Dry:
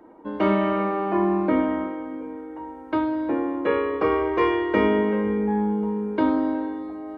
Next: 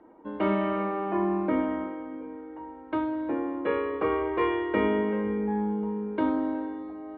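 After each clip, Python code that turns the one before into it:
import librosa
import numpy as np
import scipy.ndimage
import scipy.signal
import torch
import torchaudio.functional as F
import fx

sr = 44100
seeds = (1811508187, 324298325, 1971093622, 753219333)

y = scipy.signal.sosfilt(scipy.signal.butter(4, 3700.0, 'lowpass', fs=sr, output='sos'), x)
y = y * librosa.db_to_amplitude(-5.0)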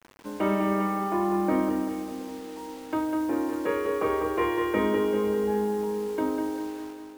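y = fx.fade_out_tail(x, sr, length_s=1.28)
y = fx.quant_dither(y, sr, seeds[0], bits=8, dither='none')
y = fx.echo_feedback(y, sr, ms=199, feedback_pct=57, wet_db=-6)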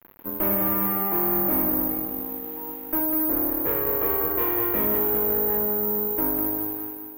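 y = fx.tube_stage(x, sr, drive_db=28.0, bias=0.75)
y = fx.air_absorb(y, sr, metres=440.0)
y = (np.kron(scipy.signal.resample_poly(y, 1, 3), np.eye(3)[0]) * 3)[:len(y)]
y = y * librosa.db_to_amplitude(5.0)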